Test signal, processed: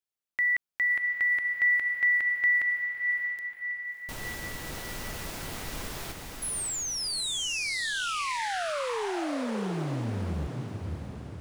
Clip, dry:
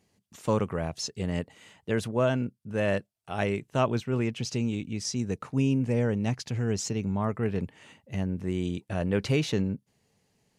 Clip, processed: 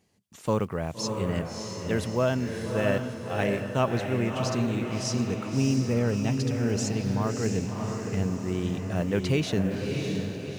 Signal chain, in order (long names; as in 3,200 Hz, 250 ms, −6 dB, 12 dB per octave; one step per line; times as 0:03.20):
one scale factor per block 7 bits
on a send: feedback delay with all-pass diffusion 630 ms, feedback 52%, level −4 dB